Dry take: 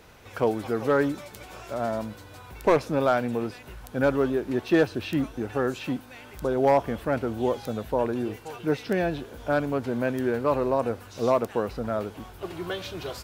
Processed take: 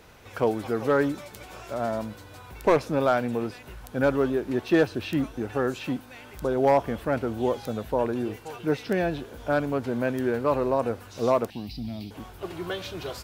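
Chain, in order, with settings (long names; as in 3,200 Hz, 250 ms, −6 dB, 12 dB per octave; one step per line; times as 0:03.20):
0:11.50–0:12.11: drawn EQ curve 290 Hz 0 dB, 490 Hz −28 dB, 750 Hz −10 dB, 1,400 Hz −29 dB, 2,200 Hz −3 dB, 3,200 Hz +3 dB, 4,800 Hz +10 dB, 6,800 Hz −10 dB, 14,000 Hz +1 dB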